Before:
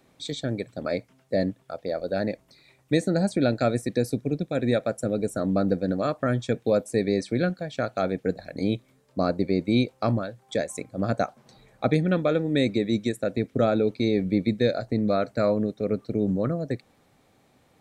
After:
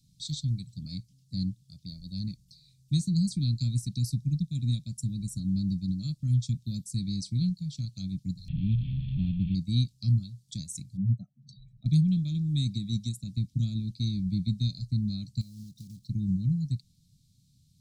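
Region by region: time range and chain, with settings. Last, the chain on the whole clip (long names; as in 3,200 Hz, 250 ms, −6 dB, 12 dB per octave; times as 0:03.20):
0:08.48–0:09.55: linear delta modulator 16 kbit/s, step −26 dBFS + comb filter 1.2 ms, depth 59%
0:10.97–0:11.86: expanding power law on the bin magnitudes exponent 2.2 + one half of a high-frequency compander encoder only
0:15.41–0:16.09: one scale factor per block 5 bits + downward compressor 8 to 1, threshold −33 dBFS
whole clip: elliptic band-stop filter 160–4,500 Hz, stop band 50 dB; high-shelf EQ 9,100 Hz −9.5 dB; level +4.5 dB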